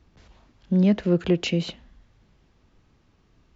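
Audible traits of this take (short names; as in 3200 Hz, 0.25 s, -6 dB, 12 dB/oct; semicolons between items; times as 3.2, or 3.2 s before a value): noise floor -63 dBFS; spectral tilt -7.0 dB/oct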